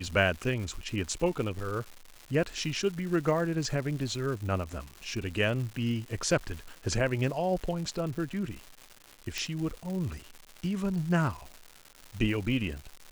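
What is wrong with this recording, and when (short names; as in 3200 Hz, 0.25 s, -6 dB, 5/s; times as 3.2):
crackle 310/s -37 dBFS
9.38 pop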